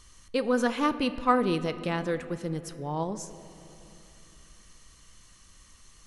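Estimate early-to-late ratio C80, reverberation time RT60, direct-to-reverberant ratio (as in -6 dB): 13.5 dB, 3.0 s, 11.0 dB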